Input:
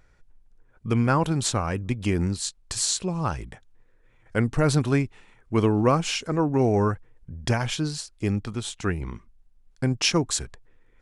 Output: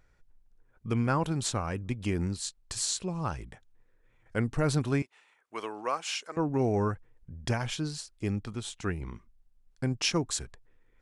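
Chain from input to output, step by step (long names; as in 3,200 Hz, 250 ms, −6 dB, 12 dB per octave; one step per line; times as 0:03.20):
0:05.02–0:06.37: high-pass filter 700 Hz 12 dB per octave
level −6 dB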